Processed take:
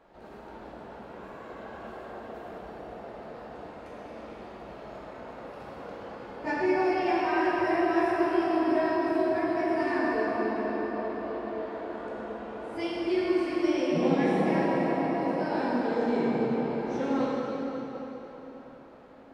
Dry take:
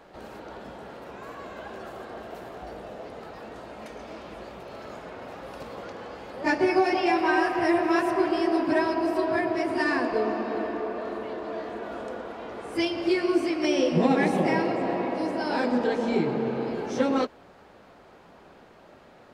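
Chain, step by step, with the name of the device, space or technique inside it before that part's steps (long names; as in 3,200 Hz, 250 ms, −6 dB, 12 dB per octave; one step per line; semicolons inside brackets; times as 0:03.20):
swimming-pool hall (convolution reverb RT60 4.1 s, pre-delay 10 ms, DRR −6 dB; high-shelf EQ 3,100 Hz −8 dB)
level −8.5 dB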